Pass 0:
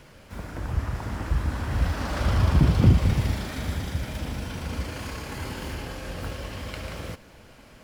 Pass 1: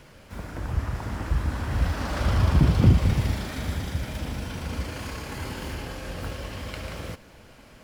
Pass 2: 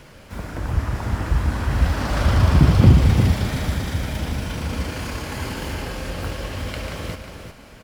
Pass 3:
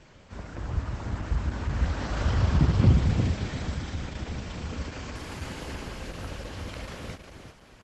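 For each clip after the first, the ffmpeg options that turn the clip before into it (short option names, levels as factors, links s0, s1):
-af anull
-af "aecho=1:1:359:0.422,volume=1.78"
-af "volume=0.422" -ar 48000 -c:a libopus -b:a 12k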